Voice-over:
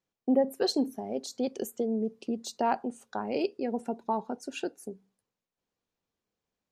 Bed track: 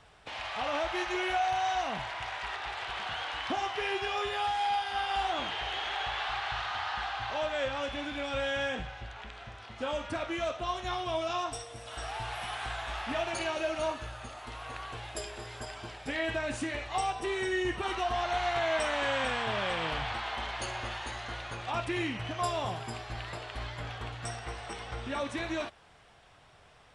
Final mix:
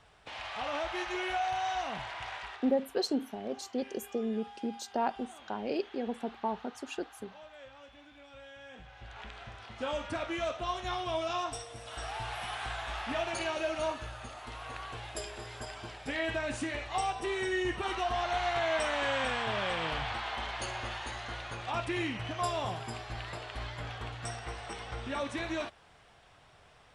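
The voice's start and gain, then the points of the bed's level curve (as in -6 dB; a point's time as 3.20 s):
2.35 s, -3.5 dB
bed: 2.36 s -3 dB
2.90 s -19 dB
8.63 s -19 dB
9.20 s -1 dB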